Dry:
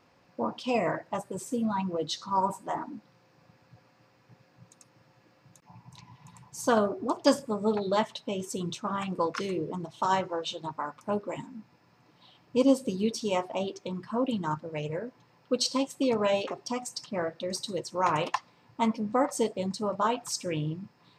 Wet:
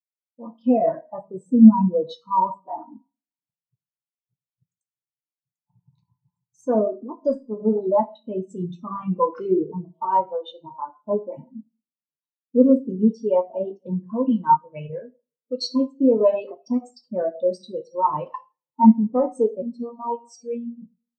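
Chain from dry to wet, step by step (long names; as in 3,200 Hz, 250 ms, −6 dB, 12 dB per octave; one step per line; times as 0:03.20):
0:14.07–0:15.71: tilt shelving filter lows −4.5 dB, about 1,100 Hz
in parallel at −2.5 dB: downward compressor, threshold −40 dBFS, peak gain reduction 22 dB
on the sum: leveller curve on the samples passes 2
automatic gain control gain up to 13.5 dB
0:19.62–0:20.82: phases set to zero 236 Hz
soft clipping −2.5 dBFS, distortion −22 dB
on a send at −3.5 dB: convolution reverb, pre-delay 3 ms
on the sum: every bin expanded away from the loudest bin 2.5 to 1
level −2 dB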